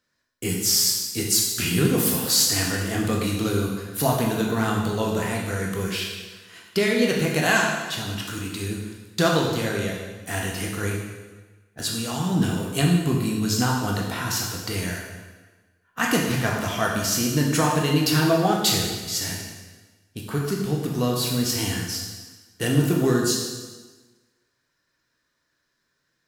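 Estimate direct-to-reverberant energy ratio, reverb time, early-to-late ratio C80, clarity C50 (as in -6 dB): -1.5 dB, 1.3 s, 4.5 dB, 2.5 dB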